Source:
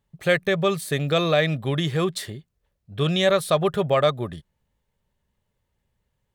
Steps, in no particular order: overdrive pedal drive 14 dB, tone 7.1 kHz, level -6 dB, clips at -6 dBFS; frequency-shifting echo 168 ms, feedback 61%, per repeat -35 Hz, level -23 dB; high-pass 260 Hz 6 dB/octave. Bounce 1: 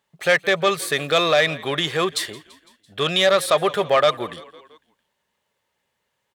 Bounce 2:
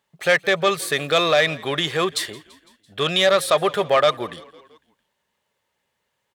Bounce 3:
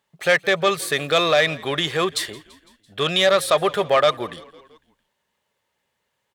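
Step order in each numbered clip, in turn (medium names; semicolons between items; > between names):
frequency-shifting echo > overdrive pedal > high-pass; overdrive pedal > frequency-shifting echo > high-pass; overdrive pedal > high-pass > frequency-shifting echo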